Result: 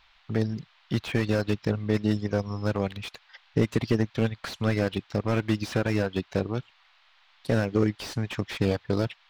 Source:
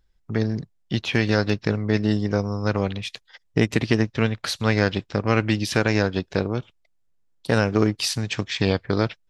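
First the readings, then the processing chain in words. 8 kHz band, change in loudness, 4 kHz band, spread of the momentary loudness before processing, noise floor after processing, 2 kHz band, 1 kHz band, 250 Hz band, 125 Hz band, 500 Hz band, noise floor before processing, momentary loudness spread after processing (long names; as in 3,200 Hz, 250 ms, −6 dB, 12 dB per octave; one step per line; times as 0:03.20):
−11.0 dB, −4.5 dB, −9.0 dB, 7 LU, −62 dBFS, −8.0 dB, −7.0 dB, −4.0 dB, −4.0 dB, −4.0 dB, −66 dBFS, 7 LU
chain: reverb reduction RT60 0.62 s
noise in a band 760–4,000 Hz −60 dBFS
slew-rate limiting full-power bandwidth 77 Hz
level −2 dB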